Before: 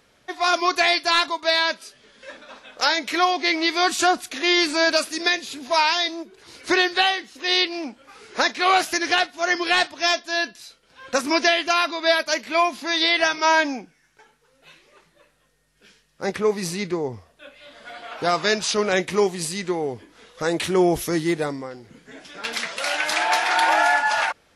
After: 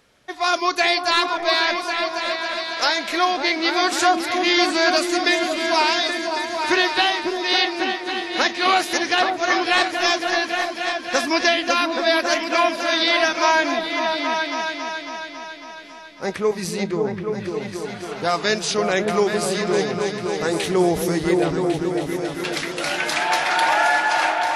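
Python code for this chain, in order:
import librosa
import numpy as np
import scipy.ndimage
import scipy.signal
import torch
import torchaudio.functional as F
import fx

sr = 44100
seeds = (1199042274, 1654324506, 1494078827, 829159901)

y = fx.echo_opening(x, sr, ms=275, hz=200, octaves=2, feedback_pct=70, wet_db=0)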